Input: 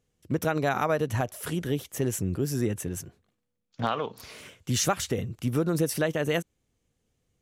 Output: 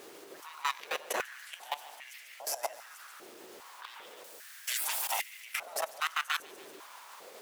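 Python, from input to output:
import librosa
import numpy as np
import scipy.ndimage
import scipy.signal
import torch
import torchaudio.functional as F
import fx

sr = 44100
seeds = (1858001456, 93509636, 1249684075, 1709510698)

p1 = fx.fade_in_head(x, sr, length_s=0.7)
p2 = fx.leveller(p1, sr, passes=2)
p3 = fx.spec_gate(p2, sr, threshold_db=-20, keep='weak')
p4 = fx.noise_reduce_blind(p3, sr, reduce_db=7)
p5 = fx.dmg_noise_colour(p4, sr, seeds[0], colour='pink', level_db=-43.0)
p6 = fx.high_shelf(p5, sr, hz=4400.0, db=12.0, at=(4.24, 5.3))
p7 = p6 + fx.echo_feedback(p6, sr, ms=143, feedback_pct=55, wet_db=-9, dry=0)
p8 = fx.level_steps(p7, sr, step_db=17)
y = fx.filter_held_highpass(p8, sr, hz=2.5, low_hz=380.0, high_hz=2100.0)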